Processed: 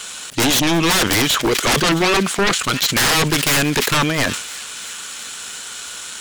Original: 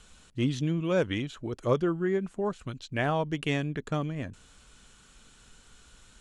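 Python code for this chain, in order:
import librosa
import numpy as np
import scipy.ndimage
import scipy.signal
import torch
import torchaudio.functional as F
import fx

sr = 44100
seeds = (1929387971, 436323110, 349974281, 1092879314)

p1 = fx.highpass(x, sr, hz=650.0, slope=6)
p2 = fx.tilt_eq(p1, sr, slope=1.5)
p3 = fx.level_steps(p2, sr, step_db=11)
p4 = p2 + (p3 * librosa.db_to_amplitude(-1.0))
p5 = fx.leveller(p4, sr, passes=1)
p6 = fx.fold_sine(p5, sr, drive_db=19, ceiling_db=-12.0)
p7 = p6 + fx.echo_wet_highpass(p6, sr, ms=337, feedback_pct=71, hz=1900.0, wet_db=-17.0, dry=0)
y = fx.sustainer(p7, sr, db_per_s=70.0)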